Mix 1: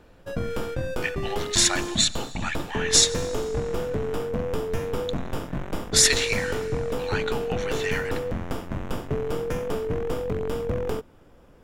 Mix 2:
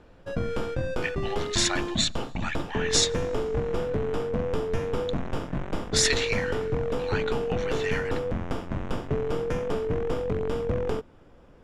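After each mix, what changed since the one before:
speech: send −11.5 dB
master: add high-frequency loss of the air 60 metres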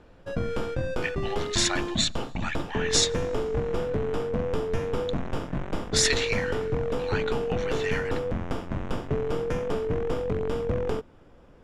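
nothing changed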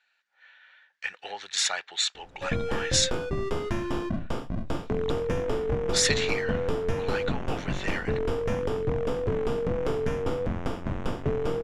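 background: entry +2.15 s
reverb: off

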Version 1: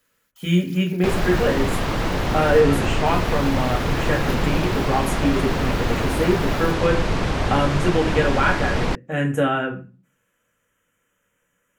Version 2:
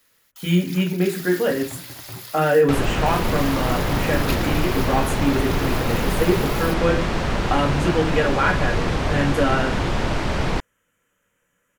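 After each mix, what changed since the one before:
first sound +9.0 dB
second sound: entry +1.65 s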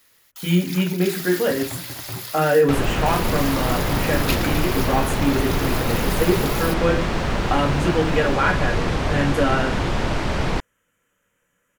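first sound +4.5 dB

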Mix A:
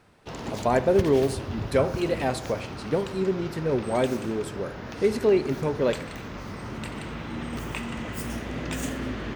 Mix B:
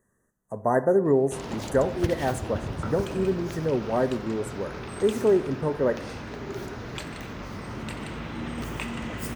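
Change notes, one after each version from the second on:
speech: add linear-phase brick-wall band-stop 2,000–5,800 Hz
background: entry +1.05 s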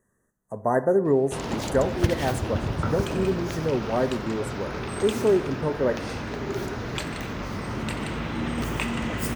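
background +5.0 dB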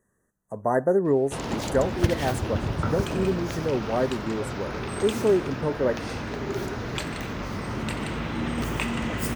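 reverb: off

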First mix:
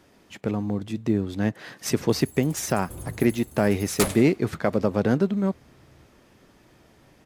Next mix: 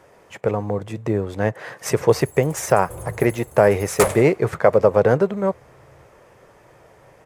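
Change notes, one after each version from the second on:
master: add graphic EQ with 10 bands 125 Hz +6 dB, 250 Hz −9 dB, 500 Hz +12 dB, 1,000 Hz +7 dB, 2,000 Hz +5 dB, 4,000 Hz −5 dB, 8,000 Hz +4 dB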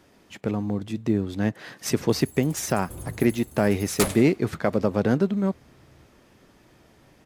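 master: add graphic EQ with 10 bands 125 Hz −6 dB, 250 Hz +9 dB, 500 Hz −12 dB, 1,000 Hz −7 dB, 2,000 Hz −5 dB, 4,000 Hz +5 dB, 8,000 Hz −4 dB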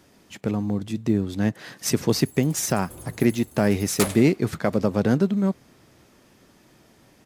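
speech: add bass and treble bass +8 dB, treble +5 dB
master: add low-shelf EQ 150 Hz −9 dB

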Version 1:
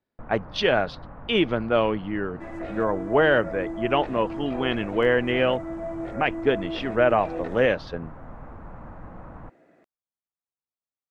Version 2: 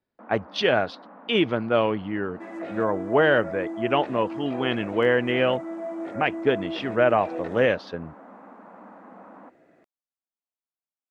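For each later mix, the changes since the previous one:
first sound: add Chebyshev high-pass with heavy ripple 190 Hz, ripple 3 dB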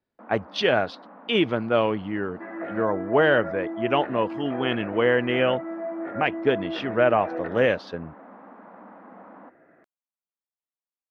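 second sound: add low-pass with resonance 1,600 Hz, resonance Q 2.3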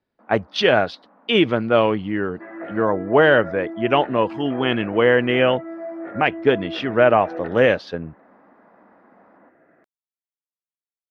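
speech +5.0 dB
first sound −8.0 dB

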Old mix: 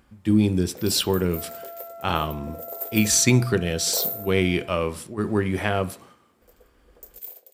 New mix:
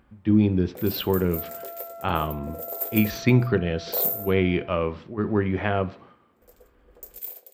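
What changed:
speech: add Gaussian smoothing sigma 2.6 samples
first sound: send +7.0 dB

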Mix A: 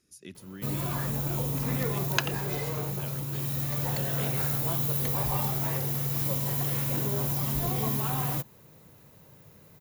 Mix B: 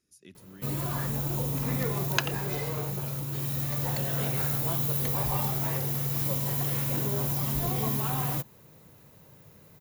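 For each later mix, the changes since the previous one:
speech −6.5 dB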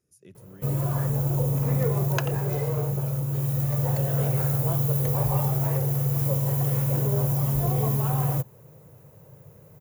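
master: add octave-band graphic EQ 125/250/500/2,000/4,000 Hz +10/−6/+8/−3/−9 dB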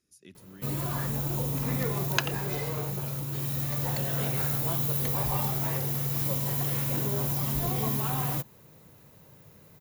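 master: add octave-band graphic EQ 125/250/500/2,000/4,000 Hz −10/+6/−8/+3/+9 dB

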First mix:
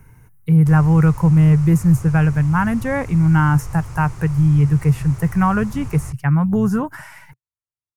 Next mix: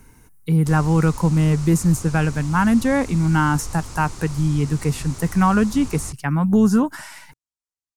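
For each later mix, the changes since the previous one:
master: add octave-band graphic EQ 125/250/2,000/4,000/8,000 Hz −12/+8/−3/+10/+7 dB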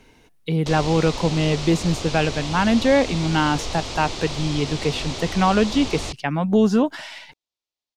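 speech −7.5 dB
master: remove drawn EQ curve 130 Hz 0 dB, 650 Hz −15 dB, 960 Hz −6 dB, 1,400 Hz −4 dB, 3,400 Hz −19 dB, 9,900 Hz +7 dB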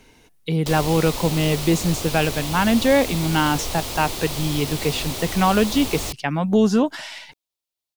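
speech: add high-shelf EQ 5,200 Hz +7 dB
background: remove low-pass filter 6,700 Hz 24 dB per octave

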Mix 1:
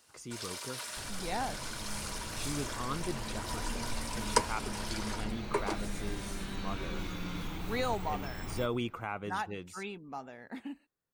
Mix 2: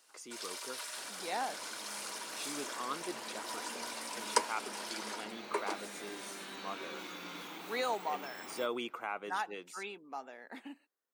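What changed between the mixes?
first sound: send off
second sound: send −6.5 dB
master: add Bessel high-pass filter 390 Hz, order 4

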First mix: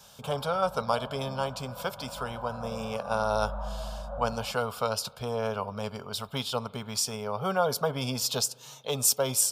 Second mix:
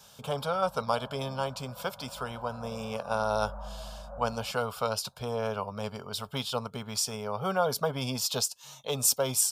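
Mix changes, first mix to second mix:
background −5.0 dB
reverb: off

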